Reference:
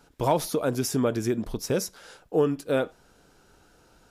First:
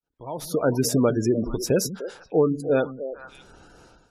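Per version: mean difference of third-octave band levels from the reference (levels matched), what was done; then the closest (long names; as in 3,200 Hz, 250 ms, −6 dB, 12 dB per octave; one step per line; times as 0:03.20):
8.5 dB: fade in at the beginning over 0.64 s
on a send: echo through a band-pass that steps 150 ms, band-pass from 180 Hz, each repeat 1.4 octaves, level −7.5 dB
on the sum: gate on every frequency bin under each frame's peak −25 dB strong
automatic gain control gain up to 16 dB
level −7.5 dB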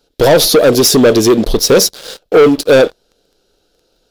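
5.0 dB: leveller curve on the samples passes 1
graphic EQ with 10 bands 125 Hz −10 dB, 250 Hz −4 dB, 500 Hz +6 dB, 1,000 Hz −11 dB, 2,000 Hz −8 dB, 4,000 Hz +9 dB, 8,000 Hz −6 dB
leveller curve on the samples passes 3
parametric band 63 Hz −11.5 dB 0.52 octaves
level +8.5 dB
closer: second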